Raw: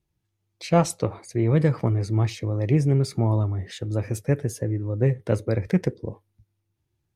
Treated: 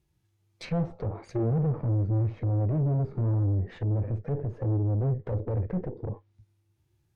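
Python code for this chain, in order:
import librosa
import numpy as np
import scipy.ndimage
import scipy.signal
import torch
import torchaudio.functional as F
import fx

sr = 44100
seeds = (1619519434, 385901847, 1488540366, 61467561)

y = fx.tube_stage(x, sr, drive_db=32.0, bias=0.6)
y = fx.env_lowpass_down(y, sr, base_hz=650.0, full_db=-33.5)
y = fx.hpss(y, sr, part='harmonic', gain_db=8)
y = y * librosa.db_to_amplitude(1.0)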